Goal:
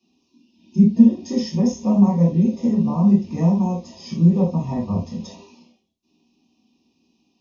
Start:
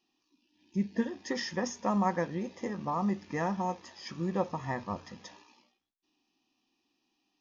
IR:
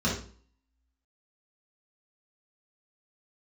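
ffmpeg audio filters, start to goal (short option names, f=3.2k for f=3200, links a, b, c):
-filter_complex "[0:a]acrossover=split=210[a][b];[b]acompressor=threshold=-47dB:ratio=1.5[c];[a][c]amix=inputs=2:normalize=0,asuperstop=centerf=1500:order=4:qfactor=1.1[d];[1:a]atrim=start_sample=2205,atrim=end_sample=3969[e];[d][e]afir=irnorm=-1:irlink=0"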